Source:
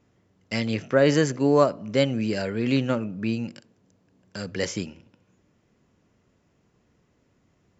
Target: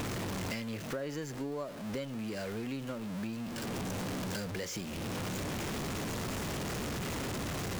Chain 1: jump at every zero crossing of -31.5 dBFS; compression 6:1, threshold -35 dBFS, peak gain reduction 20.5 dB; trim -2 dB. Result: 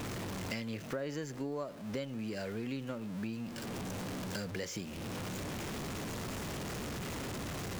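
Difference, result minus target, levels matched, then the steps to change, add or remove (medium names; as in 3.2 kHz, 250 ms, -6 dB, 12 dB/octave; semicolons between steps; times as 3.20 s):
jump at every zero crossing: distortion -6 dB
change: jump at every zero crossing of -24 dBFS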